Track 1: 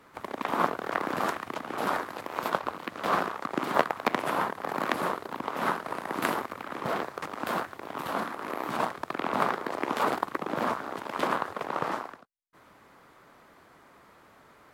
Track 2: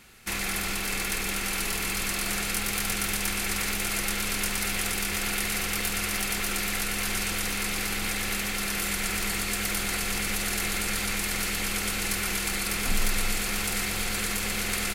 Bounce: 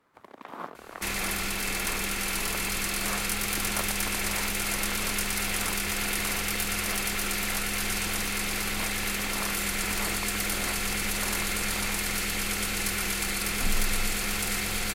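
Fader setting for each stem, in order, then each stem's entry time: −12.5, −0.5 decibels; 0.00, 0.75 seconds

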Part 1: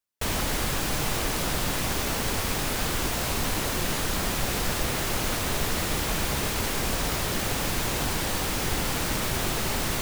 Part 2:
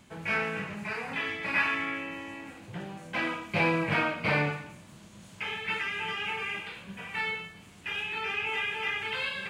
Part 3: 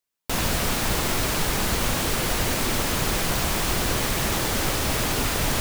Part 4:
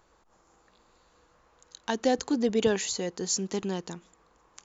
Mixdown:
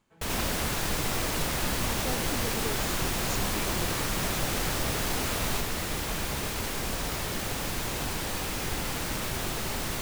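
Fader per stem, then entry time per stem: −4.5, −18.0, −8.5, −12.5 decibels; 0.00, 0.00, 0.00, 0.00 seconds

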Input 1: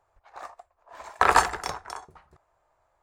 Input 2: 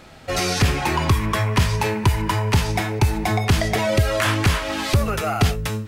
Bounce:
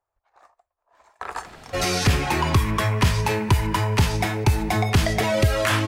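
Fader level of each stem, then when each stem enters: −13.5, −1.0 decibels; 0.00, 1.45 seconds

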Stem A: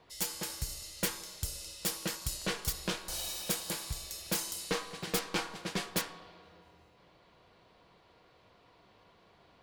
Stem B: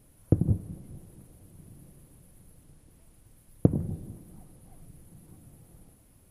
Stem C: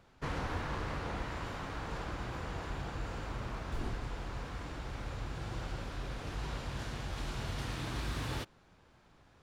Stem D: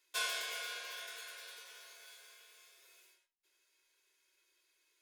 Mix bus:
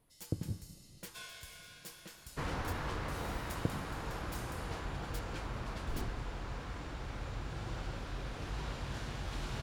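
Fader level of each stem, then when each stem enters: −16.5, −14.0, −1.0, −12.5 decibels; 0.00, 0.00, 2.15, 1.00 seconds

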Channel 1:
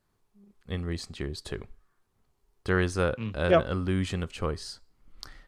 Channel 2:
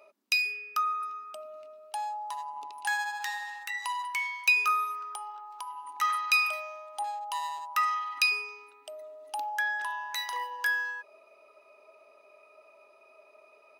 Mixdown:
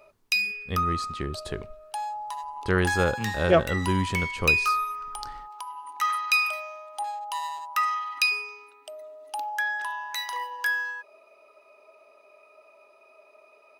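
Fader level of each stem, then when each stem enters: +2.0, +2.0 decibels; 0.00, 0.00 seconds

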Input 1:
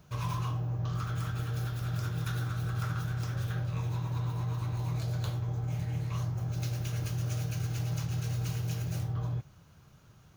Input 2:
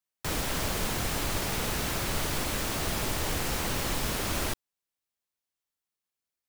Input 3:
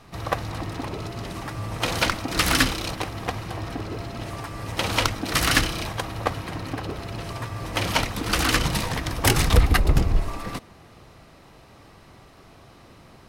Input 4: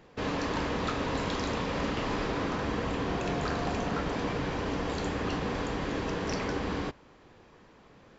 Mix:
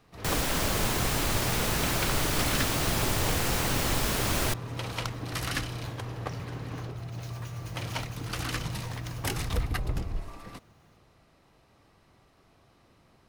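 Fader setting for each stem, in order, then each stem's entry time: −6.0, +2.5, −12.5, −12.5 decibels; 0.60, 0.00, 0.00, 0.00 seconds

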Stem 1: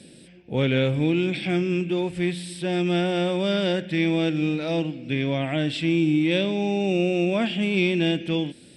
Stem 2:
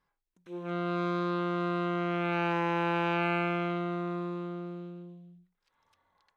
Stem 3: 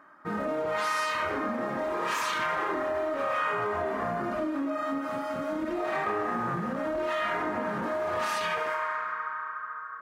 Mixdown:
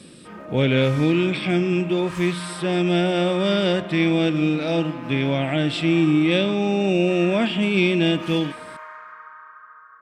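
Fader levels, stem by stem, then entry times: +3.0, −9.5, −8.0 decibels; 0.00, 2.30, 0.00 seconds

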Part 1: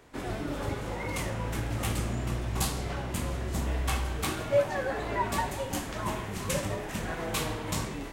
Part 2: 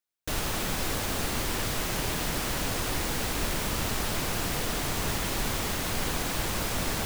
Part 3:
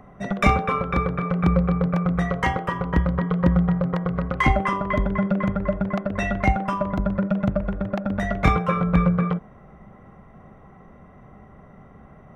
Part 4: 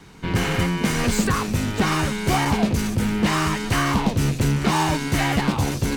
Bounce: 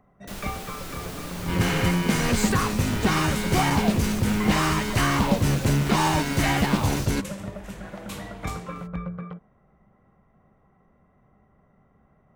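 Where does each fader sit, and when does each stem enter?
−7.5, −8.0, −14.0, −1.5 decibels; 0.75, 0.00, 0.00, 1.25 seconds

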